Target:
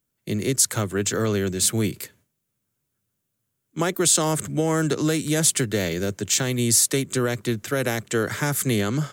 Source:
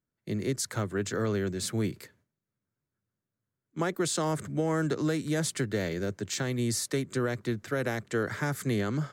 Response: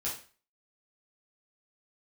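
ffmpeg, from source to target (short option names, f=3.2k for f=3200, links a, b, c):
-af "aexciter=amount=2.1:drive=4.5:freq=2.5k,volume=6dB"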